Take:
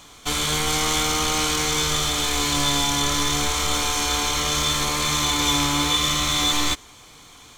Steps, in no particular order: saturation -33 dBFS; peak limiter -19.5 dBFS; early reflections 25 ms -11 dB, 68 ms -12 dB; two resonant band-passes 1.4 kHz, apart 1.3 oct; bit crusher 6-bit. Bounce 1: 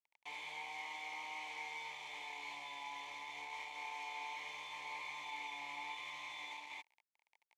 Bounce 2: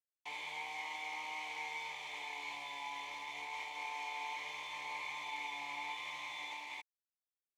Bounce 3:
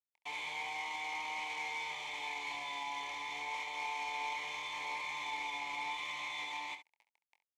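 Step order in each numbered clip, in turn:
early reflections > bit crusher > peak limiter > saturation > two resonant band-passes; early reflections > peak limiter > saturation > bit crusher > two resonant band-passes; bit crusher > peak limiter > two resonant band-passes > saturation > early reflections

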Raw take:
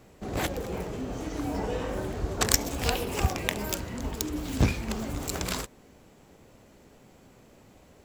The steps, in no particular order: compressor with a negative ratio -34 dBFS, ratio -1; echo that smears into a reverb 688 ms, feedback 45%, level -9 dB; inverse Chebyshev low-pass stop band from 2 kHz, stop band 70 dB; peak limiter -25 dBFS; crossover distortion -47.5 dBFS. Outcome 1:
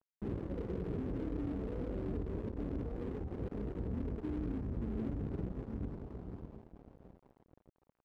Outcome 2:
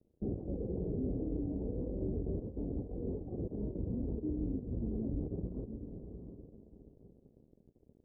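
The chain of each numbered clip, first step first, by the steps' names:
echo that smears into a reverb > peak limiter > compressor with a negative ratio > inverse Chebyshev low-pass > crossover distortion; compressor with a negative ratio > echo that smears into a reverb > crossover distortion > peak limiter > inverse Chebyshev low-pass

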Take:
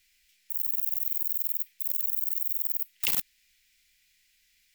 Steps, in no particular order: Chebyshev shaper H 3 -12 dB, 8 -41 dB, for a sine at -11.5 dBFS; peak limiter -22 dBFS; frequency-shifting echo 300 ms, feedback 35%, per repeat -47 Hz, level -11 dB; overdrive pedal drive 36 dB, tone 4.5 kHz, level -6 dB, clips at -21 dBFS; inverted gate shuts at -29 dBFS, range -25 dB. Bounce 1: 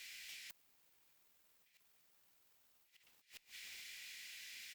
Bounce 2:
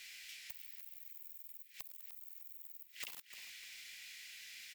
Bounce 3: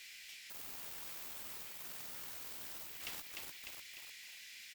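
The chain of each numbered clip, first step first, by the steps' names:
peak limiter > overdrive pedal > frequency-shifting echo > inverted gate > Chebyshev shaper; peak limiter > inverted gate > Chebyshev shaper > overdrive pedal > frequency-shifting echo; peak limiter > frequency-shifting echo > overdrive pedal > Chebyshev shaper > inverted gate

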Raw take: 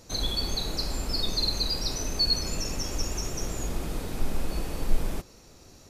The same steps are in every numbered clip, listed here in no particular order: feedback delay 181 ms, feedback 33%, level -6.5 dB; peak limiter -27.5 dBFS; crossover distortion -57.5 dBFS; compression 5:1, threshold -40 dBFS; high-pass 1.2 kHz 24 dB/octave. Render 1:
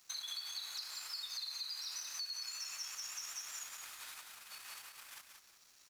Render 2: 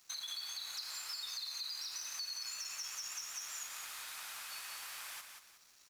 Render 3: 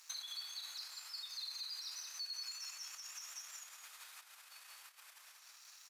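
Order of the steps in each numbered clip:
peak limiter > high-pass > crossover distortion > feedback delay > compression; high-pass > peak limiter > compression > crossover distortion > feedback delay; feedback delay > peak limiter > crossover distortion > compression > high-pass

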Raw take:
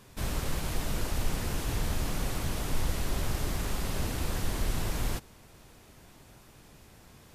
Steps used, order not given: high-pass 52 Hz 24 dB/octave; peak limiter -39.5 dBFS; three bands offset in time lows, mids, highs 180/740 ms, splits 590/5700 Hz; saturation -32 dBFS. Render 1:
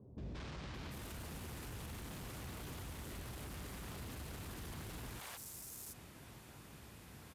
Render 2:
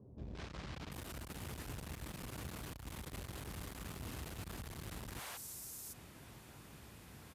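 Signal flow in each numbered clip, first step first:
high-pass > saturation > three bands offset in time > peak limiter; three bands offset in time > saturation > peak limiter > high-pass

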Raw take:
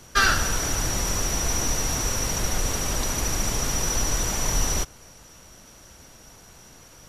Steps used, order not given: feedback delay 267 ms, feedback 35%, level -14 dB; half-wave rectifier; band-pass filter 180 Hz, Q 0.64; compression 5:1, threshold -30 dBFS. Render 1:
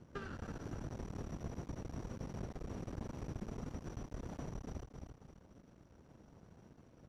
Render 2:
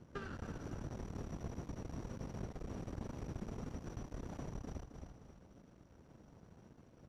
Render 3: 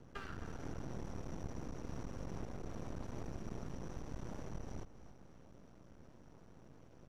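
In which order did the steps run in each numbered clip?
feedback delay > half-wave rectifier > compression > band-pass filter; half-wave rectifier > feedback delay > compression > band-pass filter; compression > band-pass filter > half-wave rectifier > feedback delay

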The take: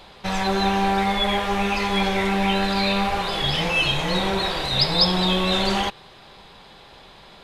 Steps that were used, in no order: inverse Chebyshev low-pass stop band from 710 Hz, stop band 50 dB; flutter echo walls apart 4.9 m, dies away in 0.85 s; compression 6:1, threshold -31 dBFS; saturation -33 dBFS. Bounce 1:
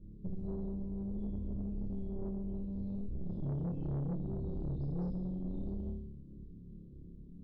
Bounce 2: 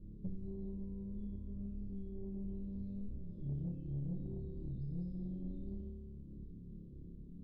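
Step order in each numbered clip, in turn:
inverse Chebyshev low-pass > compression > flutter echo > saturation; flutter echo > compression > inverse Chebyshev low-pass > saturation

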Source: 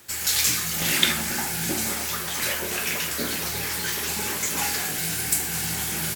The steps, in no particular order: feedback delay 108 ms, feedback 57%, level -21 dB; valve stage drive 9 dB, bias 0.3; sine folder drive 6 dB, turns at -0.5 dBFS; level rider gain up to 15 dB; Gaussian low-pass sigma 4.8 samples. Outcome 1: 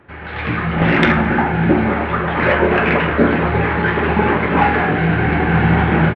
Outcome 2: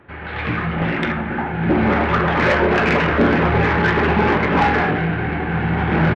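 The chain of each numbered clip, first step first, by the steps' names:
Gaussian low-pass > sine folder > valve stage > level rider > feedback delay; feedback delay > level rider > Gaussian low-pass > sine folder > valve stage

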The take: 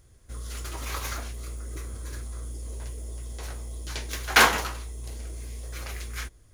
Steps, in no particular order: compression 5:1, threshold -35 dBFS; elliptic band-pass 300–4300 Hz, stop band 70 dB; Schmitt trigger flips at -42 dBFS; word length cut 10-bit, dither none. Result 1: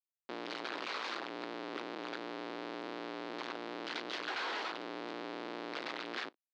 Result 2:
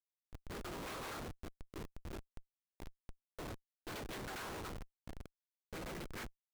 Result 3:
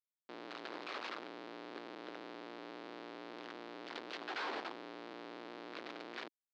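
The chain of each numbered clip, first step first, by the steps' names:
Schmitt trigger > word length cut > elliptic band-pass > compression; elliptic band-pass > compression > word length cut > Schmitt trigger; compression > word length cut > Schmitt trigger > elliptic band-pass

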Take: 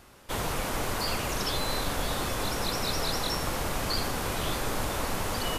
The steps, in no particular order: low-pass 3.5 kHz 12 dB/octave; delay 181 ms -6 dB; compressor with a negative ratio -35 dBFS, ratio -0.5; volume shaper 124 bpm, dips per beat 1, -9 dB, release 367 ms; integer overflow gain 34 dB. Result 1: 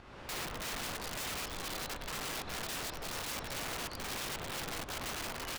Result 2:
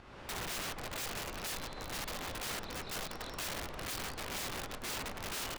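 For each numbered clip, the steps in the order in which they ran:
low-pass > compressor with a negative ratio > delay > volume shaper > integer overflow; delay > volume shaper > compressor with a negative ratio > low-pass > integer overflow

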